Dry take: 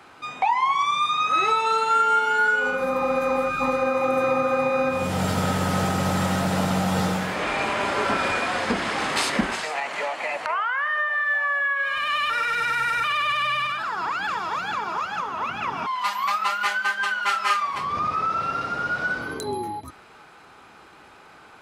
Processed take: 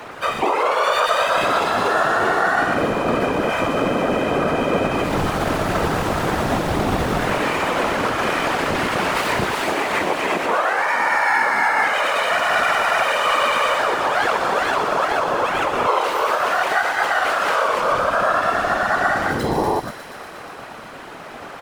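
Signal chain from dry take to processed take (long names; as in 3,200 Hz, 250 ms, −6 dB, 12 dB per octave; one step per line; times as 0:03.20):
running median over 9 samples
high-pass filter 280 Hz 6 dB per octave
in parallel at +0.5 dB: downward compressor, threshold −32 dBFS, peak gain reduction 14 dB
on the sum: brickwall limiter −20 dBFS, peak gain reduction 10.5 dB
pitch-shifted copies added −12 semitones 0 dB, −4 semitones −5 dB, +4 semitones −6 dB
random phases in short frames
on a send: delay with a high-pass on its return 120 ms, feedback 81%, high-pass 2,800 Hz, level −7.5 dB
on the sum: level +4 dB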